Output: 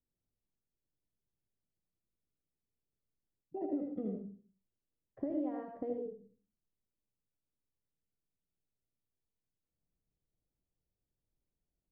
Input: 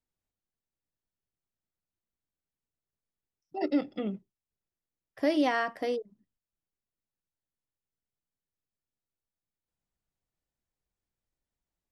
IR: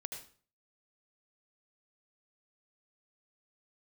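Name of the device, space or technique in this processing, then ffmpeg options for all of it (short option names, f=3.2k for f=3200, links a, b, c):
television next door: -filter_complex "[0:a]acompressor=threshold=-36dB:ratio=4,lowpass=480[a];[1:a]atrim=start_sample=2205[b];[a][b]afir=irnorm=-1:irlink=0,volume=5dB"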